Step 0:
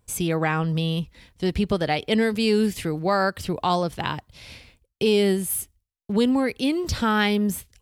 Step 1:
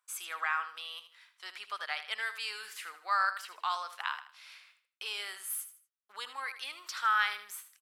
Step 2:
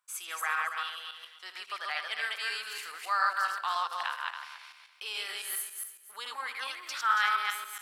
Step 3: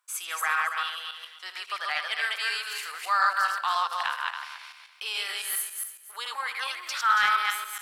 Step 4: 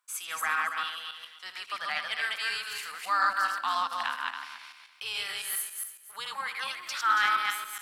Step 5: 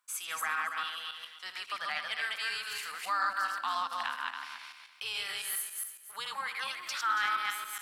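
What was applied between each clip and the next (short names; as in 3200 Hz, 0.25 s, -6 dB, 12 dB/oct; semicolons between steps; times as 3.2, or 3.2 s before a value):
ladder high-pass 1100 Hz, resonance 55%; feedback echo 78 ms, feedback 33%, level -11.5 dB
regenerating reverse delay 0.139 s, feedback 46%, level -1 dB
HPF 450 Hz 12 dB/oct; in parallel at -9.5 dB: sine folder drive 4 dB, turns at -14.5 dBFS
octaver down 2 oct, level -4 dB; gain -2.5 dB
compressor 1.5:1, threshold -36 dBFS, peak gain reduction 6 dB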